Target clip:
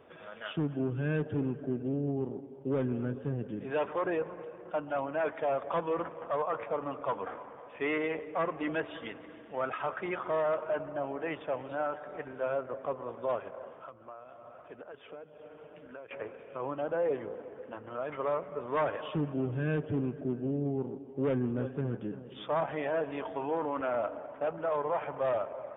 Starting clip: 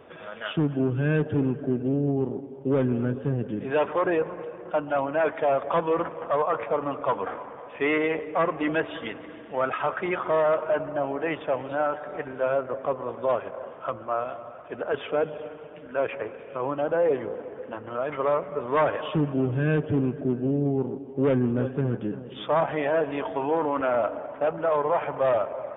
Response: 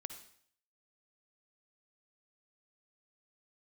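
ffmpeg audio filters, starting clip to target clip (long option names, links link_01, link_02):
-filter_complex "[0:a]asettb=1/sr,asplit=3[link_01][link_02][link_03];[link_01]atrim=end=13.804[link_04];[link_02]atrim=start=13.8:end=16.11,asetpts=PTS-STARTPTS,afade=type=in:duration=0.004:curve=qsin,afade=type=out:start_time=2.306:duration=0.004:curve=qsin,acompressor=threshold=-37dB:ratio=8[link_05];[link_03]atrim=start=16.106[link_06];[link_04][link_05]acrossfade=duration=0.004:curve1=hsin:curve2=qsin[link_07];[link_07][link_06]acrossfade=duration=0.004:curve1=qsin:curve2=hsin,volume=-7.5dB"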